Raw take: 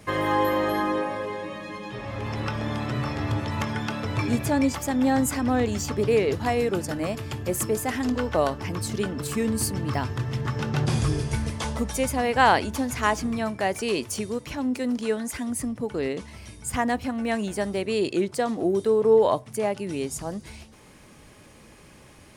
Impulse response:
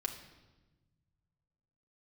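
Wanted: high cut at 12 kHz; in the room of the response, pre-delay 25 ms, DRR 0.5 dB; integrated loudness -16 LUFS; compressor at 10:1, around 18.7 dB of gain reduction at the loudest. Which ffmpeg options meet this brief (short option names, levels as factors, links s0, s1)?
-filter_complex "[0:a]lowpass=12000,acompressor=threshold=0.0224:ratio=10,asplit=2[s0][s1];[1:a]atrim=start_sample=2205,adelay=25[s2];[s1][s2]afir=irnorm=-1:irlink=0,volume=0.841[s3];[s0][s3]amix=inputs=2:normalize=0,volume=7.94"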